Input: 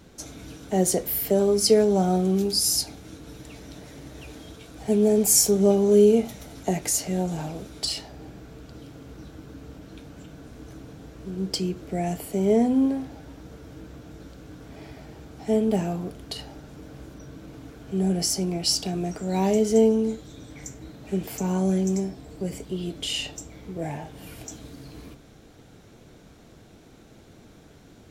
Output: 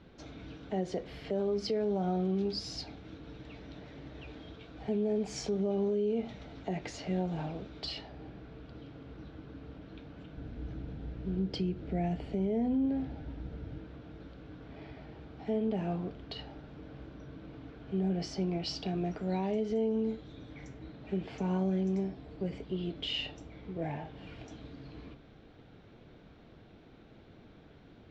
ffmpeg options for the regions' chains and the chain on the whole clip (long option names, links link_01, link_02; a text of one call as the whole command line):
ffmpeg -i in.wav -filter_complex "[0:a]asettb=1/sr,asplit=3[link_01][link_02][link_03];[link_01]atrim=end=10.374[link_04];[link_02]atrim=start=10.37:end=13.78,asetpts=PTS-STARTPTS,afade=type=in:duration=0.004:curve=qsin,afade=type=out:start_time=3.406:duration=0.004:curve=qsin,lowshelf=frequency=180:gain=9.5,bandreject=frequency=1100:width=9.1,aeval=exprs='val(0)+0.00891*(sin(2*PI*60*n/s)+sin(2*PI*2*60*n/s)/2+sin(2*PI*3*60*n/s)/3+sin(2*PI*4*60*n/s)/4+sin(2*PI*5*60*n/s)/5)':channel_layout=same[link_05];[link_03]atrim=start=13.776[link_06];[link_04][link_05]acrossfade=duration=0.004:curve1=hsin:curve2=qsin[link_07];[link_07][link_06]acrossfade=duration=0.004:curve1=qsin:curve2=hsin,lowpass=frequency=3900:width=0.5412,lowpass=frequency=3900:width=1.3066,alimiter=limit=-19dB:level=0:latency=1:release=169,volume=-5dB" out.wav